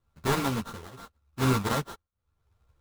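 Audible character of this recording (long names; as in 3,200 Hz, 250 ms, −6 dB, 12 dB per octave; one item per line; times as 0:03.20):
a buzz of ramps at a fixed pitch in blocks of 32 samples
tremolo triangle 0.83 Hz, depth 95%
aliases and images of a low sample rate 2,500 Hz, jitter 20%
a shimmering, thickened sound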